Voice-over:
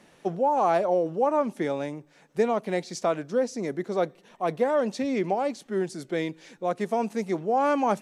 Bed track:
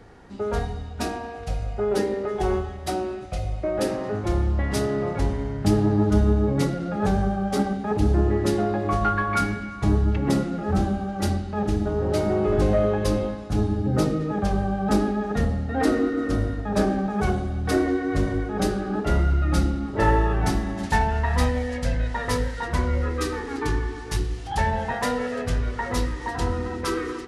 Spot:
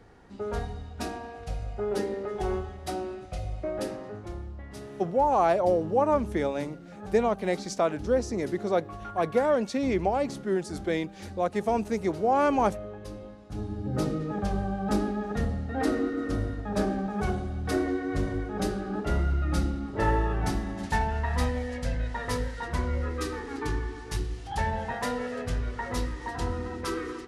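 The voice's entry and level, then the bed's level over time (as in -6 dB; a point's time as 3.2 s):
4.75 s, 0.0 dB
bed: 3.68 s -6 dB
4.57 s -18 dB
13.16 s -18 dB
14.08 s -5.5 dB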